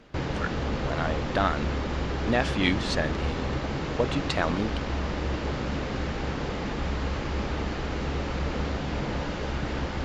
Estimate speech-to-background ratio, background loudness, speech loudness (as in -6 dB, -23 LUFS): 1.0 dB, -31.0 LUFS, -30.0 LUFS